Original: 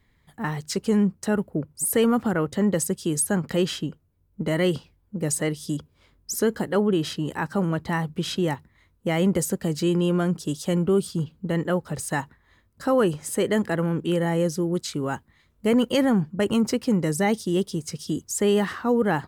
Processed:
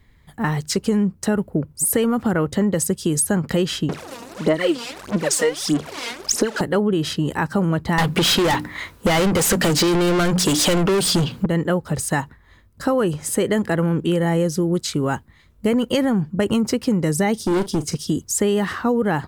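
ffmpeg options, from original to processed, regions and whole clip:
-filter_complex "[0:a]asettb=1/sr,asplit=3[a][b][c];[a]atrim=end=3.894[d];[b]atrim=start=3.89:end=6.61,asetpts=PTS-STARTPTS,afade=t=in:d=0.004:c=qsin,afade=t=out:st=2.716:d=0.004:c=qsin,aeval=exprs='val(0)+0.5*0.0266*sgn(val(0))':c=same,highpass=340,lowpass=8k,aphaser=in_gain=1:out_gain=1:delay=4.3:decay=0.77:speed=1.6:type=sinusoidal[e];[c]atrim=start=6.606[f];[d][e]acrossfade=d=0.004:c1=hsin:c2=qsin[g];[g][f]acrossfade=d=0.004:c1=qsin:c2=hsin,asettb=1/sr,asplit=3[h][i][j];[h]atrim=end=7.984[k];[i]atrim=start=7.98:end=11.46,asetpts=PTS-STARTPTS,afade=t=in:d=0.004:c=qsin,afade=t=out:st=3.476:d=0.004:c=qsin,bandreject=f=60:t=h:w=6,bandreject=f=120:t=h:w=6,bandreject=f=180:t=h:w=6,bandreject=f=240:t=h:w=6,bandreject=f=300:t=h:w=6,asplit=2[l][m];[m]highpass=f=720:p=1,volume=31dB,asoftclip=type=tanh:threshold=-11.5dB[n];[l][n]amix=inputs=2:normalize=0,lowpass=f=7.4k:p=1,volume=-6dB[o];[j]atrim=start=11.456[p];[k][o]acrossfade=d=0.004:c1=hsin:c2=qsin[q];[q][p]acrossfade=d=0.004:c1=qsin:c2=hsin,asettb=1/sr,asplit=3[r][s][t];[r]atrim=end=17.404[u];[s]atrim=start=17.4:end=17.97,asetpts=PTS-STARTPTS,afade=t=in:d=0.004:c=qsin,afade=t=out:st=0.566:d=0.004:c=qsin,equalizer=f=310:w=1.4:g=6,volume=22.5dB,asoftclip=hard,volume=-22.5dB,asplit=2[v][w];[w]adelay=40,volume=-13.5dB[x];[v][x]amix=inputs=2:normalize=0,atrim=end_sample=25137[y];[t]atrim=start=17.966[z];[u][y]acrossfade=d=0.004:c1=hsin:c2=qsin[aa];[aa][z]acrossfade=d=0.004:c1=qsin:c2=hsin,lowshelf=f=89:g=6.5,acompressor=threshold=-22dB:ratio=6,volume=6.5dB"

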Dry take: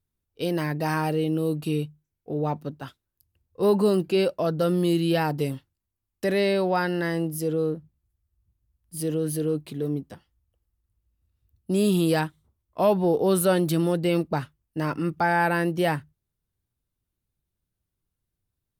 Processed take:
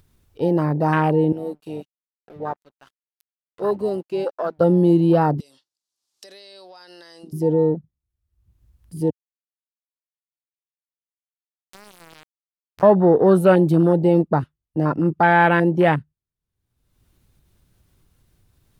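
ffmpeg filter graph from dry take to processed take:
-filter_complex "[0:a]asettb=1/sr,asplit=3[a][b][c];[a]atrim=end=1.324[d];[b]atrim=start=1.32:end=4.61,asetpts=PTS-STARTPTS,afade=t=in:d=0.004:c=qsin,afade=t=out:st=3.286:d=0.004:c=qsin,highpass=f=950:p=1,aeval=exprs='sgn(val(0))*max(abs(val(0))-0.00473,0)':c=same[e];[c]atrim=start=4.606[f];[d][e]acrossfade=d=0.004:c1=hsin:c2=qsin[g];[g][f]acrossfade=d=0.004:c1=qsin:c2=hsin,asettb=1/sr,asplit=3[h][i][j];[h]atrim=end=5.404[k];[i]atrim=start=5.4:end=7.33,asetpts=PTS-STARTPTS,afade=t=in:d=0.004:c=qsin,afade=t=out:st=1.926:d=0.004:c=qsin,highpass=530,lowpass=7.8k,highshelf=f=3.2k:t=q:w=1.5:g=13,acompressor=threshold=-38dB:ratio=12:attack=3.2:release=140:knee=1:detection=peak[l];[j]atrim=start=7.326[m];[k][l]acrossfade=d=0.004:c1=hsin:c2=qsin[n];[n][m]acrossfade=d=0.004:c1=qsin:c2=hsin,asettb=1/sr,asplit=3[o][p][q];[o]atrim=end=9.104[r];[p]atrim=start=9.1:end=12.83,asetpts=PTS-STARTPTS,afade=t=in:d=0.004:c=qsin,afade=t=out:st=3.726:d=0.004:c=qsin,acompressor=threshold=-43dB:ratio=2:attack=3.2:release=140:knee=1:detection=peak,aeval=exprs='val(0)*gte(abs(val(0)),0.0376)':c=same[s];[q]atrim=start=12.826[t];[r][s]acrossfade=d=0.004:c1=hsin:c2=qsin[u];[u][t]acrossfade=d=0.004:c1=qsin:c2=hsin,afwtdn=0.0355,highshelf=f=9.8k:g=-7,acompressor=mode=upward:threshold=-43dB:ratio=2.5,volume=7.5dB"

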